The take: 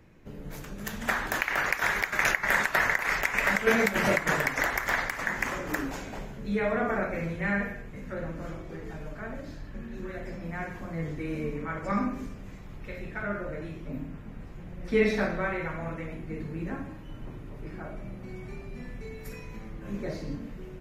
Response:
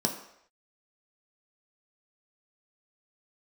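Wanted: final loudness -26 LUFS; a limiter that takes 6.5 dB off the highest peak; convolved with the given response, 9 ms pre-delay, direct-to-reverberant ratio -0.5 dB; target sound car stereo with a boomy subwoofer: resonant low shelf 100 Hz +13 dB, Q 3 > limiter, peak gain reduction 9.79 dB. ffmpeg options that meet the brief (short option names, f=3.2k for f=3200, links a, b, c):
-filter_complex "[0:a]alimiter=limit=-14.5dB:level=0:latency=1,asplit=2[a][b];[1:a]atrim=start_sample=2205,adelay=9[c];[b][c]afir=irnorm=-1:irlink=0,volume=-7dB[d];[a][d]amix=inputs=2:normalize=0,lowshelf=f=100:t=q:w=3:g=13,volume=2.5dB,alimiter=limit=-14dB:level=0:latency=1"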